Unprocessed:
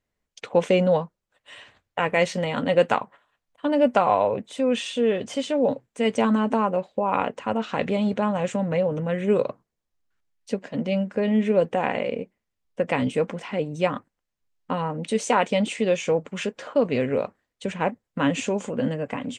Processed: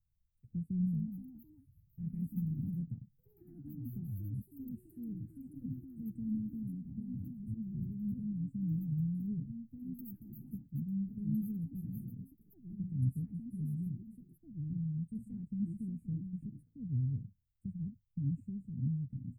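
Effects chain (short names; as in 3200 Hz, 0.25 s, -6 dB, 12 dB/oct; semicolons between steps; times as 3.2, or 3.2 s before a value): echoes that change speed 0.34 s, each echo +3 st, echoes 3; inverse Chebyshev band-stop 540–6400 Hz, stop band 70 dB; gain +5 dB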